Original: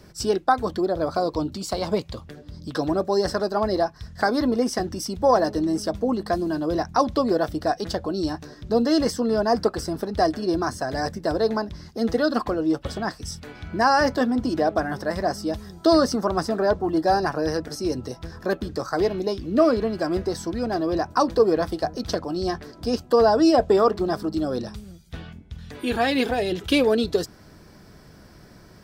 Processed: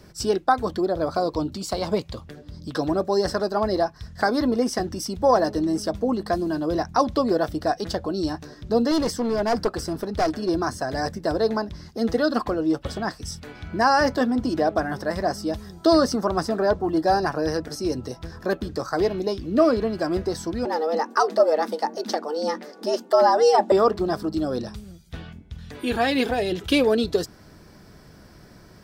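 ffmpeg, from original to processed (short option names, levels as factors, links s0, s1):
-filter_complex "[0:a]asettb=1/sr,asplit=3[s0][s1][s2];[s0]atrim=end=8.914[s3];[s1]atrim=start=8.91:end=10.49,asetpts=PTS-STARTPTS,afade=t=in:d=0.004:c=qsin,afade=t=out:st=1.576:d=0.004:c=qsin,aeval=exprs='clip(val(0),-1,0.0944)':c=same[s4];[s2]atrim=start=10.486[s5];[s3][s4]acrossfade=d=0.004:c1=hsin:c2=qsin[s6];[s6][s5]acrossfade=d=0.004:c1=qsin:c2=hsin,asettb=1/sr,asplit=3[s7][s8][s9];[s7]atrim=end=20.654[s10];[s8]atrim=start=20.65:end=23.72,asetpts=PTS-STARTPTS,afade=t=in:d=0.004:c=qsin,afade=t=out:st=3.066:d=0.004:c=qsin,afreqshift=150[s11];[s9]atrim=start=23.716[s12];[s10][s11]acrossfade=d=0.004:c1=hsin:c2=qsin[s13];[s13][s12]acrossfade=d=0.004:c1=qsin:c2=hsin"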